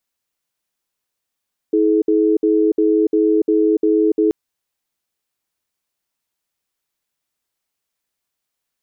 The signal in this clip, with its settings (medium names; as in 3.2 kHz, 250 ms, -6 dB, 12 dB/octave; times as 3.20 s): cadence 322 Hz, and 426 Hz, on 0.29 s, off 0.06 s, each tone -14.5 dBFS 2.58 s